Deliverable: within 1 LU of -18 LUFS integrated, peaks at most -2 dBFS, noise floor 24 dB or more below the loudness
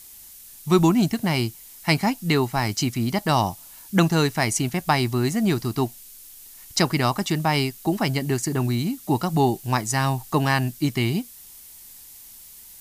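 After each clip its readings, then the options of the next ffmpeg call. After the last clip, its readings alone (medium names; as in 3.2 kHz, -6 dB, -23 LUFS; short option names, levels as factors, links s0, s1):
noise floor -45 dBFS; noise floor target -47 dBFS; loudness -23.0 LUFS; peak level -4.0 dBFS; loudness target -18.0 LUFS
-> -af "afftdn=nr=6:nf=-45"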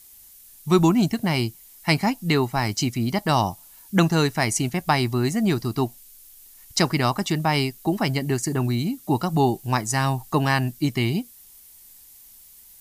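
noise floor -49 dBFS; loudness -23.0 LUFS; peak level -4.0 dBFS; loudness target -18.0 LUFS
-> -af "volume=1.78,alimiter=limit=0.794:level=0:latency=1"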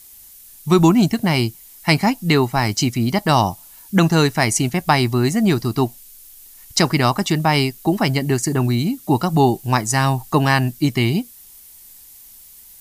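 loudness -18.0 LUFS; peak level -2.0 dBFS; noise floor -44 dBFS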